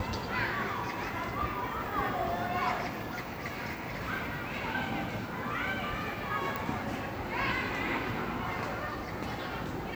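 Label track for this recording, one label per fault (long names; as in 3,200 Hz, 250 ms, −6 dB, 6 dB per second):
6.560000	6.560000	click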